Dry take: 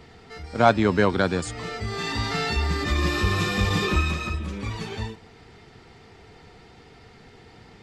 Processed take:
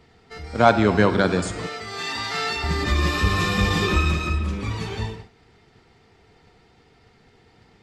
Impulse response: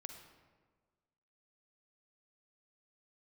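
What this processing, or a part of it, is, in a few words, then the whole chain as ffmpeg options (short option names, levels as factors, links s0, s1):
keyed gated reverb: -filter_complex "[0:a]asplit=3[s0][s1][s2];[1:a]atrim=start_sample=2205[s3];[s1][s3]afir=irnorm=-1:irlink=0[s4];[s2]apad=whole_len=345061[s5];[s4][s5]sidechaingate=range=0.0224:threshold=0.00631:ratio=16:detection=peak,volume=3.35[s6];[s0][s6]amix=inputs=2:normalize=0,asettb=1/sr,asplit=3[s7][s8][s9];[s7]atrim=end=1.674[s10];[s8]atrim=start=1.67:end=2.64,asetpts=PTS-STARTPTS,afade=t=in:d=0.004:c=qsin,afade=t=out:st=0.966:d=0.004:c=qsin,highpass=f=640:p=1[s11];[s9]atrim=start=2.636[s12];[s10][s11]acrossfade=d=0.004:c1=hsin:c2=qsin[s13];[s13][s12]acrossfade=d=0.004:c1=qsin:c2=hsin,volume=0.447"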